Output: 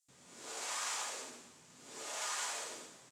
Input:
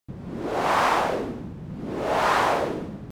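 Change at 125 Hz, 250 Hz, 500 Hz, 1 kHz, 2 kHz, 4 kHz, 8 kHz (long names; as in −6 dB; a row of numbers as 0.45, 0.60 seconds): −34.5, −29.5, −25.5, −22.5, −16.5, −8.0, +3.0 decibels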